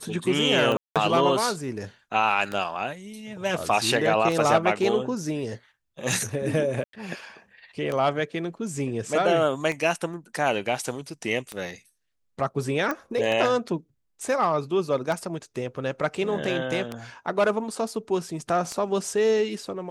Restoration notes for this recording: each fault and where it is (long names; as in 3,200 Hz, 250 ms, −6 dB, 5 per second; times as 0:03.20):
scratch tick 33 1/3 rpm −16 dBFS
0:00.77–0:00.96: drop-out 187 ms
0:06.84–0:06.93: drop-out 93 ms
0:12.91: click −15 dBFS